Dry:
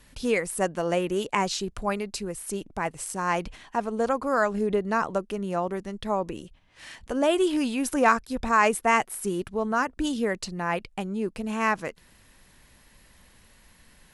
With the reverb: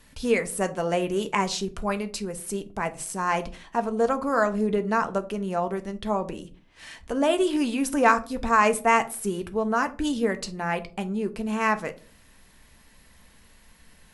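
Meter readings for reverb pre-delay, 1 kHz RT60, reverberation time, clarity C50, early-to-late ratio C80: 4 ms, 0.35 s, 0.45 s, 17.5 dB, 23.0 dB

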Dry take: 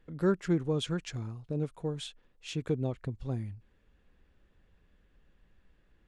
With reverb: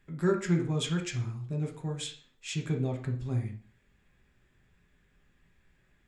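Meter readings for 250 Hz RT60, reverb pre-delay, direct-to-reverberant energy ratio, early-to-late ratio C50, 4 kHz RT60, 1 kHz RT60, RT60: 0.45 s, 3 ms, 2.0 dB, 9.0 dB, 0.40 s, 0.50 s, 0.50 s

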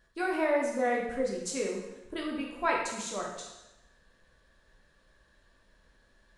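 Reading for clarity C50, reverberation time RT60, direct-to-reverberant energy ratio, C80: 3.0 dB, 1.0 s, −2.0 dB, 5.5 dB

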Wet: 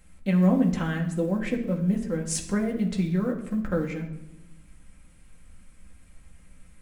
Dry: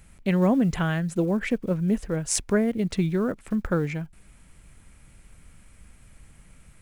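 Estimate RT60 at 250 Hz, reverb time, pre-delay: 1.5 s, 0.90 s, 4 ms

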